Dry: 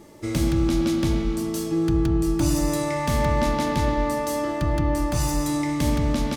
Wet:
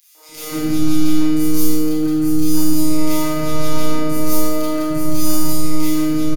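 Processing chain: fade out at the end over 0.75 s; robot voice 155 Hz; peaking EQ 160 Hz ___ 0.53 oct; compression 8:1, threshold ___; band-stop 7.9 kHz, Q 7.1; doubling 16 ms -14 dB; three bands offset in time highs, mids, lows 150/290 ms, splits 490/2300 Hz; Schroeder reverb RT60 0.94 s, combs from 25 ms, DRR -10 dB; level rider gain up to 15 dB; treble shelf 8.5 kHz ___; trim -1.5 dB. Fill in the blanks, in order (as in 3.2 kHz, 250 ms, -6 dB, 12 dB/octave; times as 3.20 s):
-6.5 dB, -32 dBFS, +11 dB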